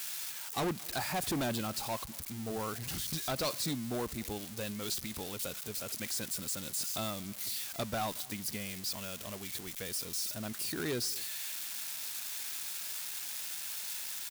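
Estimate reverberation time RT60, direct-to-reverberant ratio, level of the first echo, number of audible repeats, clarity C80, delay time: none, none, -24.0 dB, 1, none, 0.23 s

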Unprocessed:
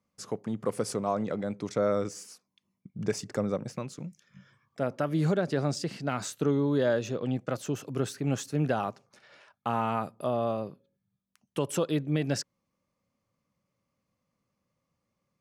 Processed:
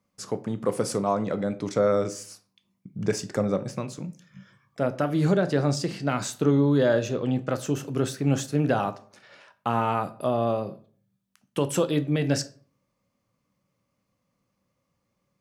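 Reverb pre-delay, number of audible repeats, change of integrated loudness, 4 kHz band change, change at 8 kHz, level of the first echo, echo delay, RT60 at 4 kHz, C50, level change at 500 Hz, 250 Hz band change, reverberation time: 10 ms, none, +4.5 dB, +4.5 dB, +4.5 dB, none, none, 0.30 s, 17.0 dB, +4.5 dB, +5.0 dB, 0.45 s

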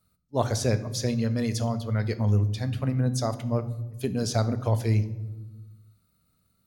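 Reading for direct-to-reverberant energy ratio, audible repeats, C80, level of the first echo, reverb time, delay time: 10.5 dB, none, 17.0 dB, none, 1.2 s, none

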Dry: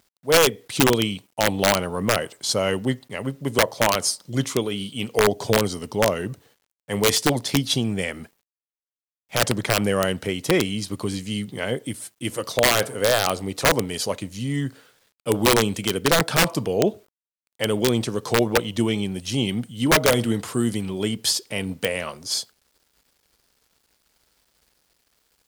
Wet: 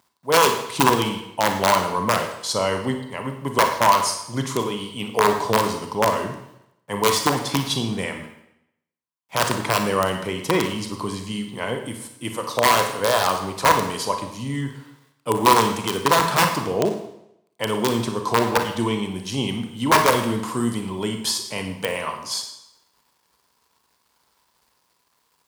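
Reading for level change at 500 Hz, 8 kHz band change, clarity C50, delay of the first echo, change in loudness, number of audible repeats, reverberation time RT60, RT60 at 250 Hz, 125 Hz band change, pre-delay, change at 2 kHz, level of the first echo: -0.5 dB, -1.5 dB, 6.0 dB, none, +0.5 dB, none, 0.80 s, 0.80 s, -2.0 dB, 31 ms, 0.0 dB, none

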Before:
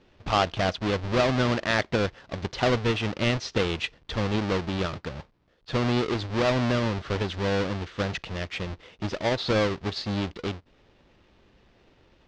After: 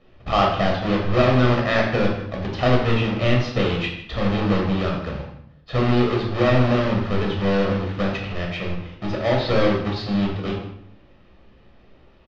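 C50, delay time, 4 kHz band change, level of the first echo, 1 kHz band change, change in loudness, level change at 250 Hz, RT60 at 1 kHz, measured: 4.0 dB, 0.156 s, +1.5 dB, -15.0 dB, +5.0 dB, +5.5 dB, +7.0 dB, 0.60 s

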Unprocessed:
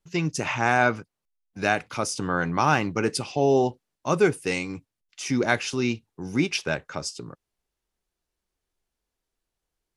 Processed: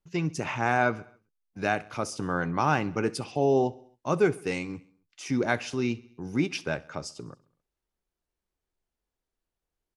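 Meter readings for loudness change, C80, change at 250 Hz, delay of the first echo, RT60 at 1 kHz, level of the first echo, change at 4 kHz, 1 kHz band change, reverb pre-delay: -3.5 dB, none, -2.5 dB, 67 ms, none, -22.0 dB, -7.0 dB, -3.5 dB, none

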